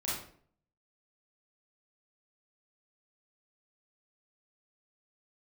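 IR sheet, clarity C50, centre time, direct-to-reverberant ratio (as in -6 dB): 0.5 dB, 57 ms, -7.5 dB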